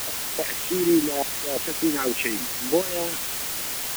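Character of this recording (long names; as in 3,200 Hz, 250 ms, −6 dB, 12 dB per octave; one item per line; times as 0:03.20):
chopped level 0.64 Hz, depth 60%, duty 80%
phaser sweep stages 2, 3.4 Hz, lowest notch 540–1,500 Hz
a quantiser's noise floor 6 bits, dither triangular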